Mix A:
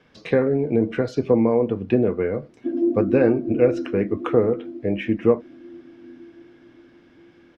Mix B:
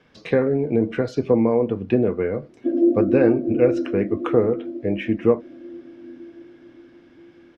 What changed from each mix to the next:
background: add synth low-pass 560 Hz, resonance Q 4.3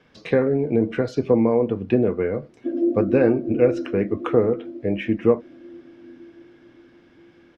background -4.0 dB

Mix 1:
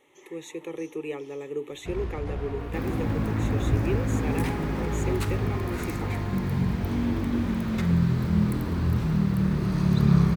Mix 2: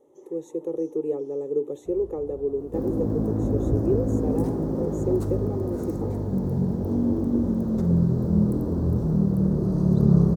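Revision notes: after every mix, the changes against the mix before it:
first sound -12.0 dB; master: add EQ curve 120 Hz 0 dB, 520 Hz +8 dB, 1600 Hz -16 dB, 2300 Hz -28 dB, 5700 Hz -8 dB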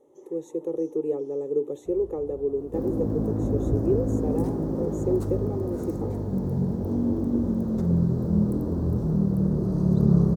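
reverb: off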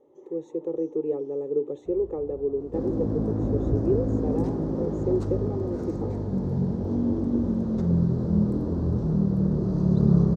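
second sound: add high shelf 3000 Hz +9.5 dB; master: add air absorption 150 m

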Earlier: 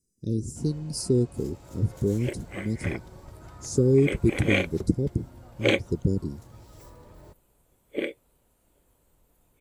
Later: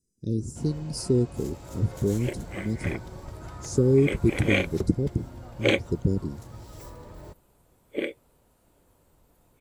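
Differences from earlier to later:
speech: add high shelf 9100 Hz -6 dB; first sound +5.5 dB

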